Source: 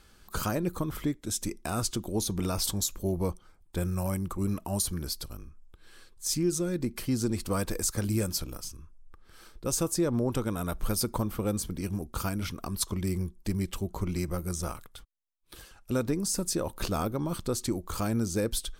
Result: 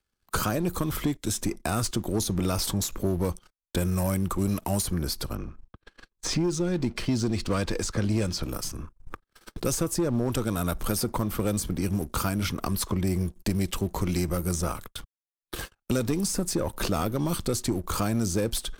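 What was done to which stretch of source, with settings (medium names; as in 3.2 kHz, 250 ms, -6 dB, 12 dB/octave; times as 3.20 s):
5.35–8.43 s: low-pass 4.6 kHz
whole clip: waveshaping leveller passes 2; gate -42 dBFS, range -41 dB; three bands compressed up and down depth 70%; trim -3 dB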